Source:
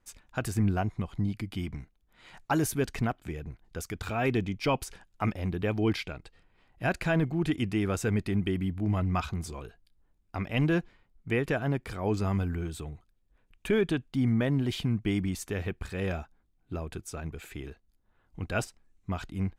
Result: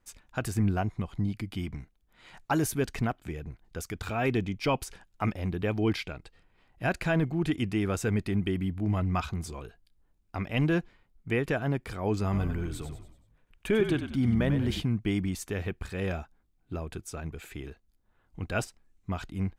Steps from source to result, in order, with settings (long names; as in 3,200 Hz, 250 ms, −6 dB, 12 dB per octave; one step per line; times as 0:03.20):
0:12.23–0:14.82: echo with shifted repeats 95 ms, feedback 44%, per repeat −46 Hz, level −8 dB